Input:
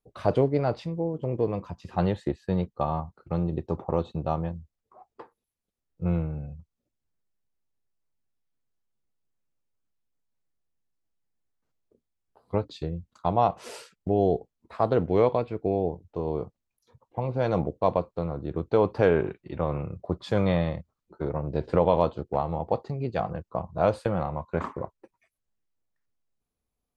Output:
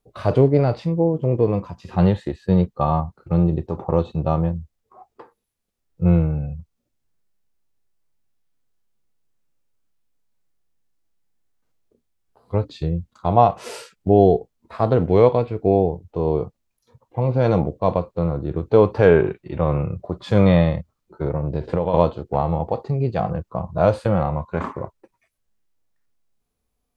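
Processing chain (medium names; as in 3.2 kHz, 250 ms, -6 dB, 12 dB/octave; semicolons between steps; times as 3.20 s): harmonic-percussive split harmonic +9 dB; 21.26–21.94 s: compression 4:1, threshold -20 dBFS, peak gain reduction 9 dB; trim +1.5 dB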